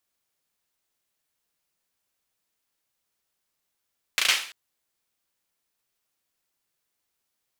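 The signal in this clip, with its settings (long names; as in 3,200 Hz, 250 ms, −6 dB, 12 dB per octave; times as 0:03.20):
synth clap length 0.34 s, apart 35 ms, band 2,600 Hz, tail 0.47 s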